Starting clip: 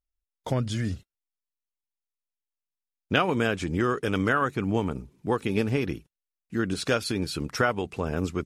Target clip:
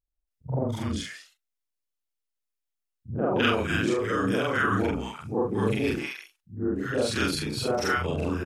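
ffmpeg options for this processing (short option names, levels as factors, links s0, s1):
-filter_complex "[0:a]afftfilt=real='re':imag='-im':win_size=4096:overlap=0.75,acrossover=split=160|940[s0][s1][s2];[s1]adelay=80[s3];[s2]adelay=290[s4];[s0][s3][s4]amix=inputs=3:normalize=0,volume=2"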